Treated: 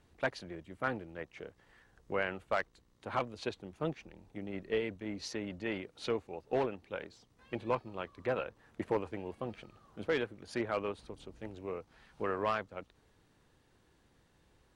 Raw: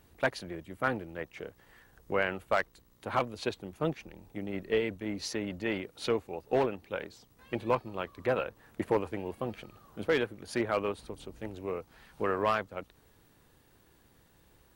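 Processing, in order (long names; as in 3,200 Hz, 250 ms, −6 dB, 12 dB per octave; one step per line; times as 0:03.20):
low-pass filter 7,800 Hz 12 dB per octave
level −4.5 dB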